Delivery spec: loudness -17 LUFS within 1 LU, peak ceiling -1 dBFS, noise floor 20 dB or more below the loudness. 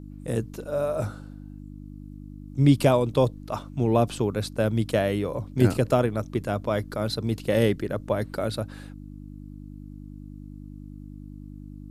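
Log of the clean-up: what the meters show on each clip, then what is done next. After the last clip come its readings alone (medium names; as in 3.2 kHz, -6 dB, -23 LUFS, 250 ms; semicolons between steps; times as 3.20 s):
hum 50 Hz; highest harmonic 300 Hz; hum level -38 dBFS; loudness -25.5 LUFS; peak level -5.5 dBFS; loudness target -17.0 LUFS
-> de-hum 50 Hz, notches 6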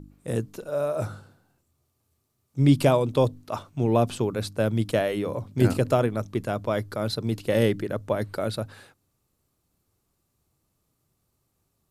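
hum not found; loudness -25.5 LUFS; peak level -6.0 dBFS; loudness target -17.0 LUFS
-> trim +8.5 dB; peak limiter -1 dBFS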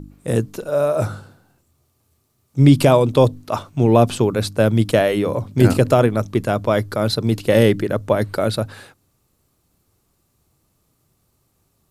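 loudness -17.5 LUFS; peak level -1.0 dBFS; noise floor -66 dBFS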